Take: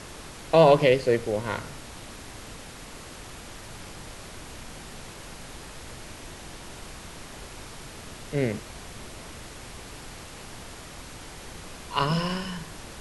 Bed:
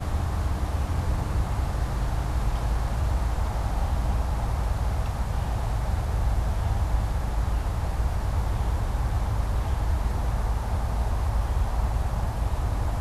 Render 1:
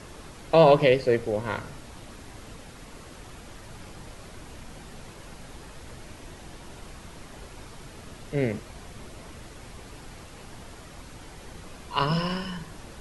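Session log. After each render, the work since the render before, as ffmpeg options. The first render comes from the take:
-af "afftdn=nr=6:nf=-43"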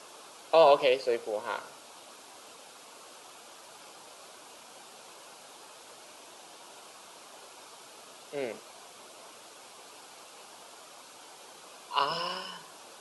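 -af "highpass=610,equalizer=f=1.9k:t=o:w=0.44:g=-11.5"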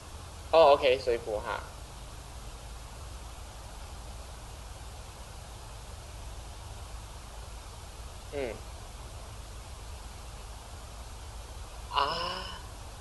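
-filter_complex "[1:a]volume=-19.5dB[a];[0:a][a]amix=inputs=2:normalize=0"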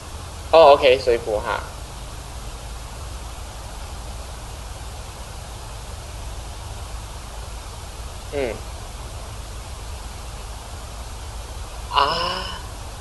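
-af "volume=10.5dB,alimiter=limit=-1dB:level=0:latency=1"

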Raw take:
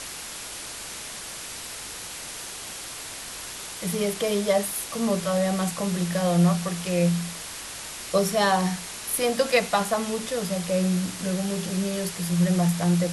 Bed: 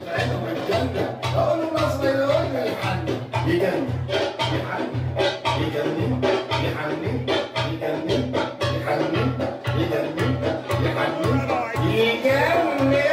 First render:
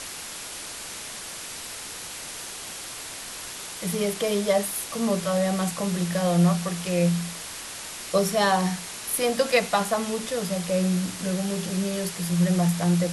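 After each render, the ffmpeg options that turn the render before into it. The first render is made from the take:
-af "bandreject=f=50:t=h:w=4,bandreject=f=100:t=h:w=4,bandreject=f=150:t=h:w=4"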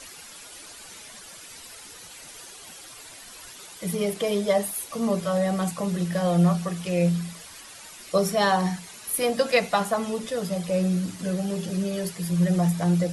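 -af "afftdn=nr=11:nf=-37"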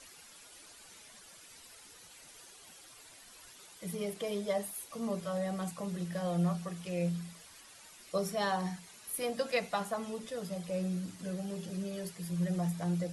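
-af "volume=-11dB"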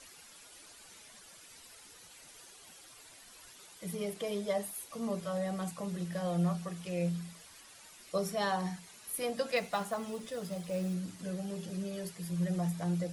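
-filter_complex "[0:a]asettb=1/sr,asplit=3[a][b][c];[a]atrim=end=9.564[d];[b]atrim=start=9.56:end=10.94,asetpts=PTS-STARTPTS,afade=t=in:d=0.004:c=qsin,afade=t=out:st=1.376:d=0.004:c=qsin,acrusher=bits=6:mode=log:mix=0:aa=0.000001[e];[c]atrim=start=10.936[f];[d][e]acrossfade=d=0.004:c1=hsin:c2=qsin[g];[g][f]acrossfade=d=0.004:c1=qsin:c2=hsin"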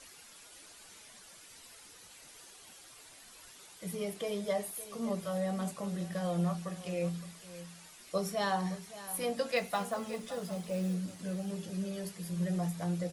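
-filter_complex "[0:a]asplit=2[a][b];[b]adelay=21,volume=-12dB[c];[a][c]amix=inputs=2:normalize=0,aecho=1:1:566:0.178"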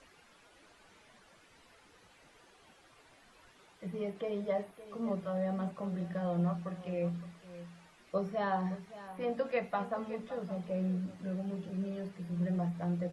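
-filter_complex "[0:a]acrossover=split=3000[a][b];[b]acompressor=threshold=-57dB:ratio=4:attack=1:release=60[c];[a][c]amix=inputs=2:normalize=0,aemphasis=mode=reproduction:type=75kf"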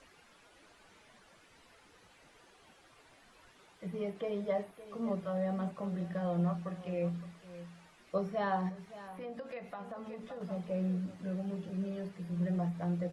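-filter_complex "[0:a]asettb=1/sr,asplit=3[a][b][c];[a]atrim=end=8.694[d];[b]atrim=start=8.69:end=10.41,asetpts=PTS-STARTPTS,afade=t=in:d=0.004:c=qsin,afade=t=out:st=1.716:d=0.004:c=qsin,acompressor=threshold=-41dB:ratio=4:attack=3.2:release=140:knee=1:detection=peak[e];[c]atrim=start=10.406[f];[d][e]acrossfade=d=0.004:c1=hsin:c2=qsin[g];[g][f]acrossfade=d=0.004:c1=qsin:c2=hsin"

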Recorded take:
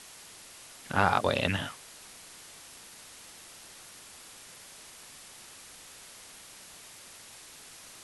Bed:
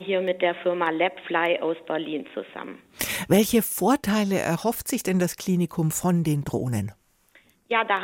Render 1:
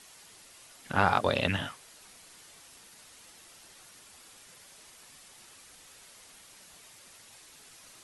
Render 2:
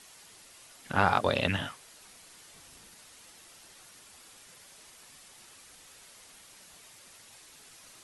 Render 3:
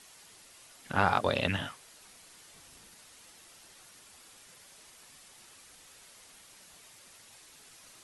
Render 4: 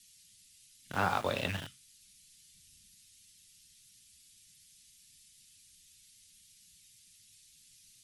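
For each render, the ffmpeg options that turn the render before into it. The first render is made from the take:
-af "afftdn=nr=6:nf=-51"
-filter_complex "[0:a]asettb=1/sr,asplit=3[a][b][c];[a]atrim=end=2.544[d];[b]atrim=start=2.54:end=2.94,asetpts=PTS-STARTPTS,afade=t=in:d=0.004:c=qsin,afade=t=out:st=0.396:d=0.004:c=qsin,lowshelf=f=250:g=8.5[e];[c]atrim=start=2.936[f];[d][e]acrossfade=d=0.004:c1=hsin:c2=qsin[g];[g][f]acrossfade=d=0.004:c1=qsin:c2=hsin"
-af "volume=-1.5dB"
-filter_complex "[0:a]flanger=delay=9.8:depth=9.2:regen=-62:speed=0.33:shape=sinusoidal,acrossover=split=200|2600[a][b][c];[b]aeval=exprs='val(0)*gte(abs(val(0)),0.0106)':c=same[d];[a][d][c]amix=inputs=3:normalize=0"

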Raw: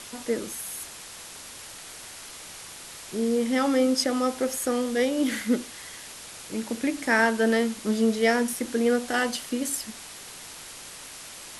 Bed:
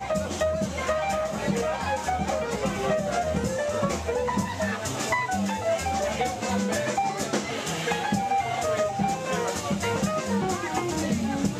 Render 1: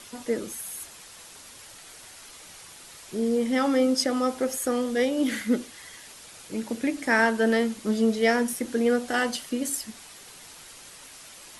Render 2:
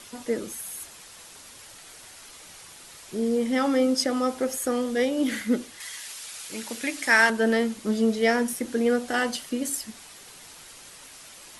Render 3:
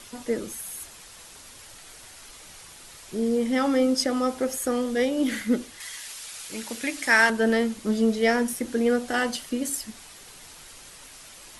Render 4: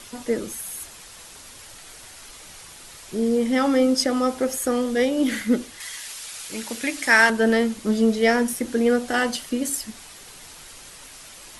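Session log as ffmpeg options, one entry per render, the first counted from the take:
-af "afftdn=nr=6:nf=-43"
-filter_complex "[0:a]asettb=1/sr,asplit=3[a][b][c];[a]atrim=end=5.804[d];[b]atrim=start=5.8:end=7.3,asetpts=PTS-STARTPTS,afade=t=in:d=0.004:c=qsin,afade=t=out:st=1.496:d=0.004:c=qsin,tiltshelf=f=840:g=-8[e];[c]atrim=start=7.296[f];[d][e]acrossfade=d=0.004:c1=hsin:c2=qsin[g];[g][f]acrossfade=d=0.004:c1=qsin:c2=hsin"
-af "lowshelf=f=60:g=11"
-af "volume=3dB"

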